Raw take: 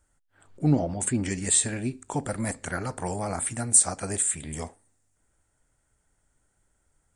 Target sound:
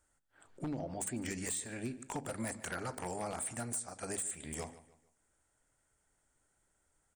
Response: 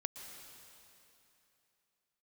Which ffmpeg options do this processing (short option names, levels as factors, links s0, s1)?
-filter_complex "[0:a]lowshelf=f=180:g=-7.5,bandreject=f=50:t=h:w=6,bandreject=f=100:t=h:w=6,bandreject=f=150:t=h:w=6,bandreject=f=200:t=h:w=6,bandreject=f=250:t=h:w=6,acompressor=threshold=0.0282:ratio=16,aeval=exprs='0.0422*(abs(mod(val(0)/0.0422+3,4)-2)-1)':c=same,asplit=2[s0][s1];[s1]adelay=150,lowpass=f=4500:p=1,volume=0.158,asplit=2[s2][s3];[s3]adelay=150,lowpass=f=4500:p=1,volume=0.37,asplit=2[s4][s5];[s5]adelay=150,lowpass=f=4500:p=1,volume=0.37[s6];[s0][s2][s4][s6]amix=inputs=4:normalize=0,volume=0.708"